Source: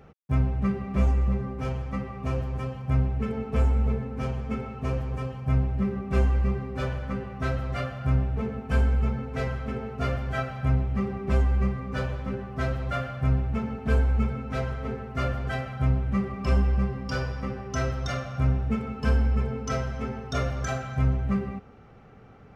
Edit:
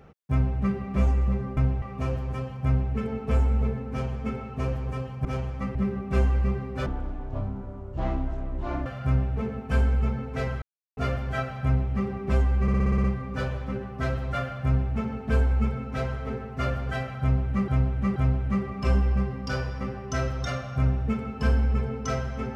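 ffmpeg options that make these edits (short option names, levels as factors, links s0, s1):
-filter_complex "[0:a]asplit=18[s0][s1][s2][s3][s4][s5][s6][s7][s8][s9][s10][s11][s12][s13][s14][s15][s16][s17];[s0]atrim=end=1.572[s18];[s1]atrim=start=5.498:end=5.752[s19];[s2]atrim=start=2.068:end=5.502[s20];[s3]atrim=start=1.568:end=2.072[s21];[s4]atrim=start=5.748:end=6.864[s22];[s5]atrim=start=6.86:end=7.86,asetpts=PTS-STARTPTS,asetrate=22050,aresample=44100[s23];[s6]atrim=start=7.856:end=9.62,asetpts=PTS-STARTPTS,afade=t=out:st=1.76:d=0.004:c=hsin[s24];[s7]atrim=start=9.62:end=9.97,asetpts=PTS-STARTPTS,volume=0[s25];[s8]atrim=start=9.97:end=11.682,asetpts=PTS-STARTPTS,afade=t=in:d=0.004:c=hsin[s26];[s9]atrim=start=11.618:end=11.682[s27];[s10]atrim=start=11.618:end=11.682[s28];[s11]atrim=start=11.618:end=11.682[s29];[s12]atrim=start=11.618:end=11.682[s30];[s13]atrim=start=11.618:end=11.682[s31];[s14]atrim=start=11.618:end=11.682[s32];[s15]atrim=start=11.618:end=16.262[s33];[s16]atrim=start=15.778:end=16.262[s34];[s17]atrim=start=15.778[s35];[s18][s19]acrossfade=d=0.004:c1=hsin:c2=hsin[s36];[s36][s20]acrossfade=d=0.004:c1=hsin:c2=hsin[s37];[s37][s21]acrossfade=d=0.004:c1=hsin:c2=hsin[s38];[s38][s22]acrossfade=d=0.004:c1=hsin:c2=hsin[s39];[s39][s23]acrossfade=d=0.004:c1=hsin:c2=hsin[s40];[s24][s25][s26]concat=n=3:v=0:a=1[s41];[s40][s41]acrossfade=d=0.004:c1=hsin:c2=hsin[s42];[s42][s27]acrossfade=d=0.004:c1=hsin:c2=hsin[s43];[s43][s28]acrossfade=d=0.004:c1=hsin:c2=hsin[s44];[s44][s29]acrossfade=d=0.004:c1=hsin:c2=hsin[s45];[s45][s30]acrossfade=d=0.004:c1=hsin:c2=hsin[s46];[s46][s31]acrossfade=d=0.004:c1=hsin:c2=hsin[s47];[s47][s32]acrossfade=d=0.004:c1=hsin:c2=hsin[s48];[s48][s33]acrossfade=d=0.004:c1=hsin:c2=hsin[s49];[s49][s34]acrossfade=d=0.004:c1=hsin:c2=hsin[s50];[s50][s35]acrossfade=d=0.004:c1=hsin:c2=hsin"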